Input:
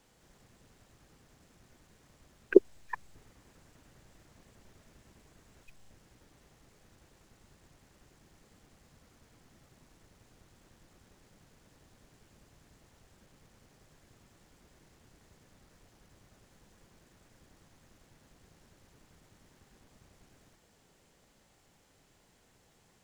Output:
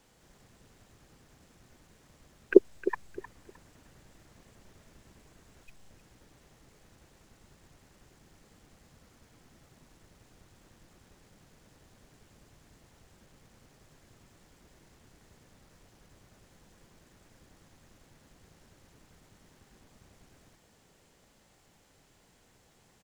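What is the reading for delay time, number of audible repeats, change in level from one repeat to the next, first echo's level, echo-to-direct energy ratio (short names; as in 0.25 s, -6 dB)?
0.309 s, 2, -12.5 dB, -13.5 dB, -13.5 dB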